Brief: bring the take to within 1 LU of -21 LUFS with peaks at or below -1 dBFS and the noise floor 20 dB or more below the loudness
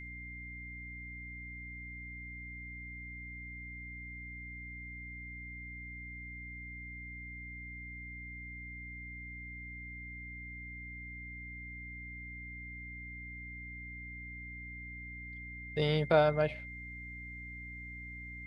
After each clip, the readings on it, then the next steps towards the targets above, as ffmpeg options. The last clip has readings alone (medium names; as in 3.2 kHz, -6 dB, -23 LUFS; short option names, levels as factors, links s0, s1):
hum 60 Hz; highest harmonic 300 Hz; hum level -46 dBFS; steady tone 2.1 kHz; tone level -45 dBFS; loudness -40.0 LUFS; peak level -13.0 dBFS; loudness target -21.0 LUFS
-> -af "bandreject=f=60:t=h:w=4,bandreject=f=120:t=h:w=4,bandreject=f=180:t=h:w=4,bandreject=f=240:t=h:w=4,bandreject=f=300:t=h:w=4"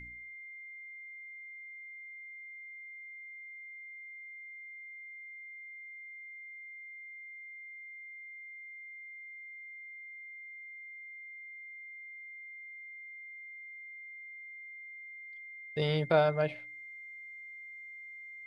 hum not found; steady tone 2.1 kHz; tone level -45 dBFS
-> -af "bandreject=f=2100:w=30"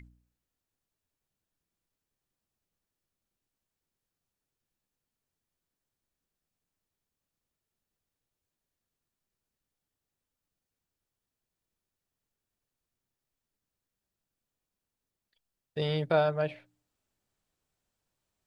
steady tone not found; loudness -29.5 LUFS; peak level -13.5 dBFS; loudness target -21.0 LUFS
-> -af "volume=2.66"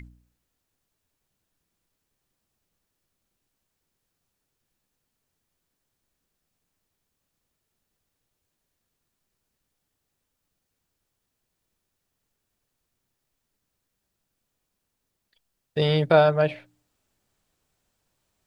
loudness -21.0 LUFS; peak level -5.0 dBFS; noise floor -80 dBFS